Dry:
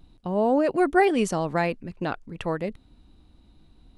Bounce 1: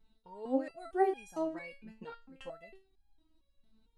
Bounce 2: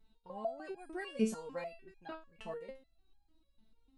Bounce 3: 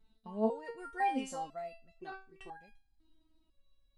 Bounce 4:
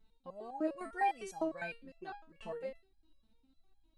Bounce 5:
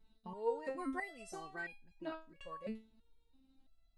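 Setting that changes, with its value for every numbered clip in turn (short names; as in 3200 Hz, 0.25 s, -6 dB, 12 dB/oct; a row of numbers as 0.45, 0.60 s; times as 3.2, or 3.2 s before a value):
stepped resonator, rate: 4.4, 6.7, 2, 9.9, 3 Hz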